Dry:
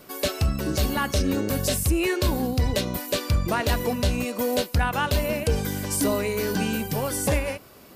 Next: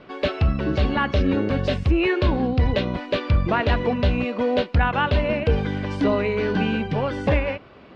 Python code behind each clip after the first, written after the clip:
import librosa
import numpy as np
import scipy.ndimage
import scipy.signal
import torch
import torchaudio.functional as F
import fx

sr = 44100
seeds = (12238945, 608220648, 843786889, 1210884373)

y = scipy.signal.sosfilt(scipy.signal.butter(4, 3300.0, 'lowpass', fs=sr, output='sos'), x)
y = y * librosa.db_to_amplitude(3.5)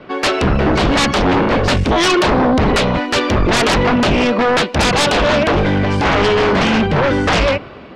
y = fx.fold_sine(x, sr, drive_db=12, ceiling_db=-10.0)
y = fx.band_widen(y, sr, depth_pct=40)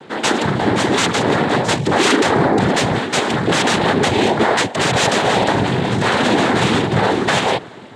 y = fx.noise_vocoder(x, sr, seeds[0], bands=6)
y = y * librosa.db_to_amplitude(-1.0)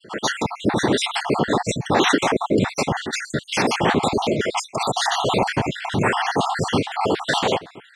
y = fx.spec_dropout(x, sr, seeds[1], share_pct=57)
y = y * librosa.db_to_amplitude(-1.5)